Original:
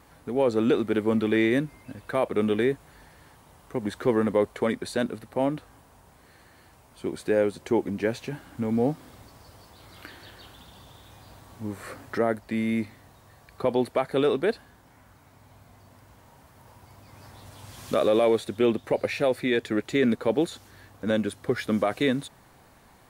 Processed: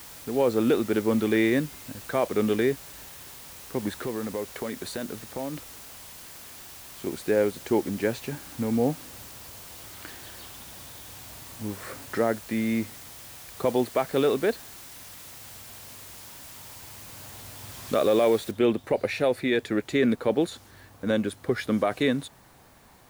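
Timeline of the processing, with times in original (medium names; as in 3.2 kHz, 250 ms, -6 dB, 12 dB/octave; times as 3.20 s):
4.01–7.07 s: compression 3:1, threshold -30 dBFS
18.51 s: noise floor step -45 dB -63 dB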